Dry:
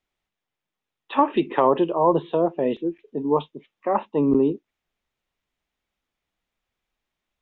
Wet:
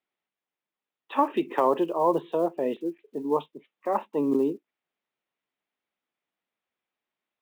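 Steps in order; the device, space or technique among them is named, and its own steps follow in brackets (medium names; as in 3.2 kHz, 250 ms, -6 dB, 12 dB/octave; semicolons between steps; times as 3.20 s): early digital voice recorder (band-pass 220–3500 Hz; block-companded coder 7-bit); trim -4 dB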